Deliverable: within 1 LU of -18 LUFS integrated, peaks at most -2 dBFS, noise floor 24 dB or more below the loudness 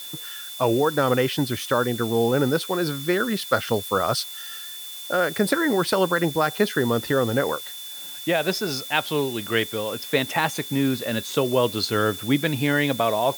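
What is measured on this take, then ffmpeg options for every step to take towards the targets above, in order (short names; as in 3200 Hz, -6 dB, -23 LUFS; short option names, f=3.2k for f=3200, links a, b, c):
steady tone 3500 Hz; tone level -37 dBFS; noise floor -37 dBFS; noise floor target -48 dBFS; loudness -23.5 LUFS; peak -6.0 dBFS; loudness target -18.0 LUFS
-> -af "bandreject=f=3.5k:w=30"
-af "afftdn=nr=11:nf=-37"
-af "volume=5.5dB,alimiter=limit=-2dB:level=0:latency=1"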